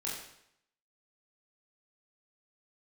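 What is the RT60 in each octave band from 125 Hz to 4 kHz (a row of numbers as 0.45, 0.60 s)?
0.75, 0.70, 0.75, 0.75, 0.75, 0.70 s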